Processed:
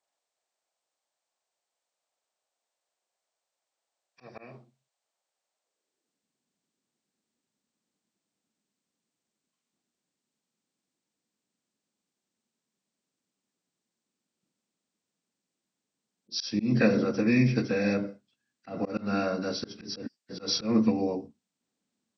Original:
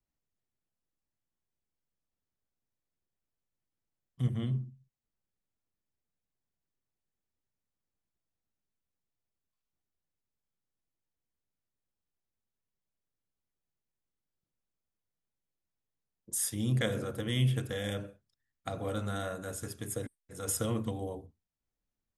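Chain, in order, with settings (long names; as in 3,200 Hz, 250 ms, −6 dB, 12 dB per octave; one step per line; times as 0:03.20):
hearing-aid frequency compression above 1,400 Hz 1.5 to 1
high-pass filter sweep 650 Hz → 220 Hz, 0:05.57–0:06.27
volume swells 169 ms
level +7 dB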